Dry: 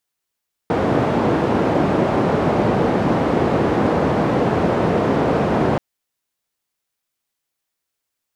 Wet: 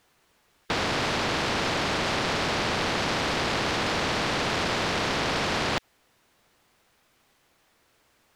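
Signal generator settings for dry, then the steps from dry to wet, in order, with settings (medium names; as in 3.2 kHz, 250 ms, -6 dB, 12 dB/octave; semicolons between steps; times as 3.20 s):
noise band 110–550 Hz, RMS -17.5 dBFS 5.08 s
low-pass 1.7 kHz 6 dB/octave; saturation -14 dBFS; spectrum-flattening compressor 4:1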